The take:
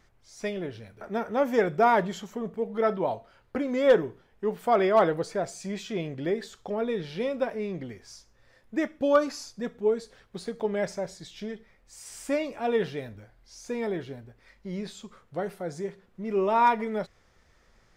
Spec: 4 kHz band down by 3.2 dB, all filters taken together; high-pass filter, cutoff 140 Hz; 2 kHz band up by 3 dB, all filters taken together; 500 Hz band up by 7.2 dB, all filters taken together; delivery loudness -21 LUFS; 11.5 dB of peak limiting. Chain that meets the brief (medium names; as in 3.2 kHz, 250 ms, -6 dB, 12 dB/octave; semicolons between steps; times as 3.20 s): high-pass 140 Hz; peaking EQ 500 Hz +8.5 dB; peaking EQ 2 kHz +4.5 dB; peaking EQ 4 kHz -6 dB; trim +4.5 dB; peak limiter -8.5 dBFS